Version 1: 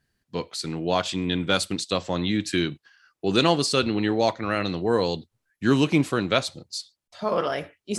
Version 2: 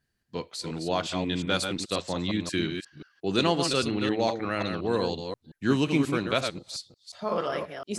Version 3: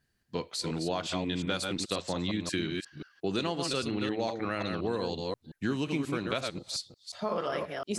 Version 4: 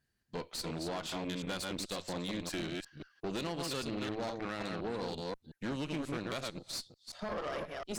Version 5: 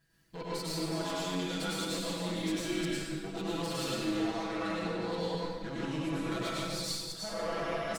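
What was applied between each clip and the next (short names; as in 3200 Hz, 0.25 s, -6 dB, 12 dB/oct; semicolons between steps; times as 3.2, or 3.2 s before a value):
reverse delay 0.178 s, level -6 dB; gain -4.5 dB
compressor 5:1, threshold -30 dBFS, peak gain reduction 11.5 dB; gain +2 dB
tube stage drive 32 dB, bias 0.8
comb 6.1 ms, depth 93%; reverse; compressor 6:1, threshold -44 dBFS, peak gain reduction 15 dB; reverse; plate-style reverb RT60 1.3 s, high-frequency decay 0.95×, pre-delay 85 ms, DRR -6.5 dB; gain +4.5 dB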